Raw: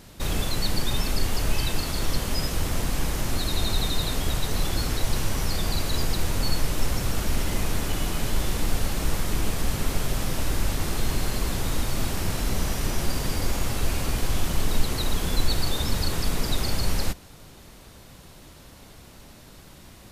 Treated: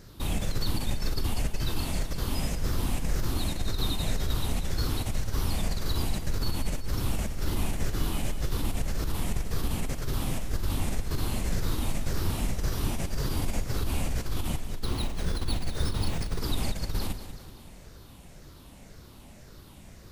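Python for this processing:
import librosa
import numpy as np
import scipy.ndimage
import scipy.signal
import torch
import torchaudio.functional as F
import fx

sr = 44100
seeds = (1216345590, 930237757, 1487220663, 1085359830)

y = fx.spec_ripple(x, sr, per_octave=0.56, drift_hz=-1.9, depth_db=7)
y = fx.low_shelf(y, sr, hz=360.0, db=5.5)
y = fx.over_compress(y, sr, threshold_db=-18.0, ratio=-1.0)
y = fx.echo_feedback(y, sr, ms=190, feedback_pct=54, wet_db=-11.0)
y = fx.resample_bad(y, sr, factor=3, down='filtered', up='hold', at=(14.84, 16.39))
y = y * 10.0 ** (-8.5 / 20.0)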